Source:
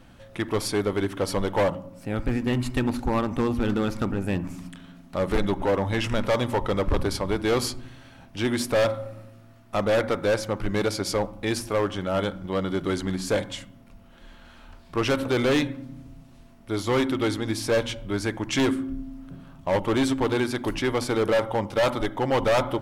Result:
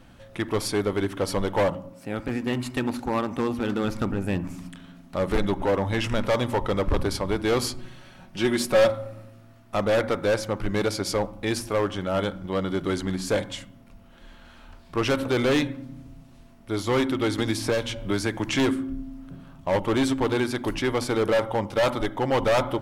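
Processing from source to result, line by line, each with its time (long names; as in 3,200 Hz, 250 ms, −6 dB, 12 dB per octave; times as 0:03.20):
0:01.93–0:03.84: high-pass filter 190 Hz 6 dB per octave
0:07.78–0:08.90: comb filter 5.4 ms
0:17.38–0:18.56: multiband upward and downward compressor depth 100%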